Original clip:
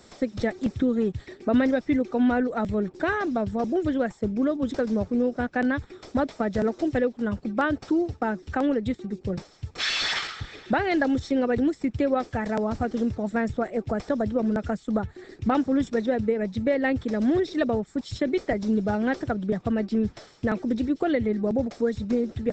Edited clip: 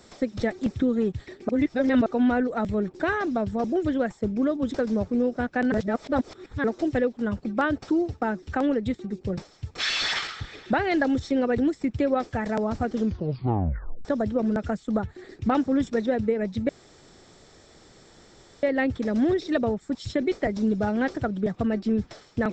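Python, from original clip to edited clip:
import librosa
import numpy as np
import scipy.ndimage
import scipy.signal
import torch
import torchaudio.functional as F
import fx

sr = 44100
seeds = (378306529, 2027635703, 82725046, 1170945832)

y = fx.edit(x, sr, fx.reverse_span(start_s=1.49, length_s=0.57),
    fx.reverse_span(start_s=5.72, length_s=0.92),
    fx.tape_stop(start_s=12.98, length_s=1.07),
    fx.insert_room_tone(at_s=16.69, length_s=1.94), tone=tone)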